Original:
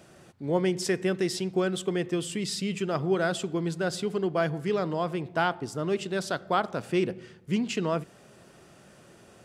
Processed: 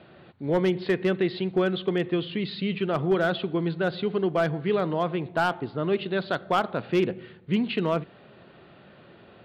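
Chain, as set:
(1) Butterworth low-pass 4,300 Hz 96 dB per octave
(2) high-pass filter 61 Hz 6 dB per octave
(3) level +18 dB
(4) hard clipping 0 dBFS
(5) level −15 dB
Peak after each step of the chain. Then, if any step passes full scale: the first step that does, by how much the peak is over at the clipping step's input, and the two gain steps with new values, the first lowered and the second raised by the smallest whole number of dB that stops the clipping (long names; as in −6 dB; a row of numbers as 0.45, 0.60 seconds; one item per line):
−11.5, −11.5, +6.5, 0.0, −15.0 dBFS
step 3, 6.5 dB
step 3 +11 dB, step 5 −8 dB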